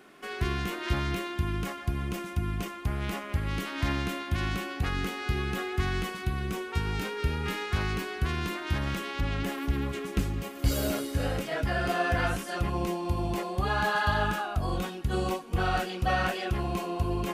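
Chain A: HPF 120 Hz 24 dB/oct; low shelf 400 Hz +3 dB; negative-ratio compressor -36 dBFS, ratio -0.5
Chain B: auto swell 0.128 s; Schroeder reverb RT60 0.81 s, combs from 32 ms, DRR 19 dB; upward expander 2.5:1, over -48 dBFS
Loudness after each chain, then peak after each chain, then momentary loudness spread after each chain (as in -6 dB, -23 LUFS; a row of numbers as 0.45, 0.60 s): -36.0, -41.5 LUFS; -17.0, -15.0 dBFS; 8, 15 LU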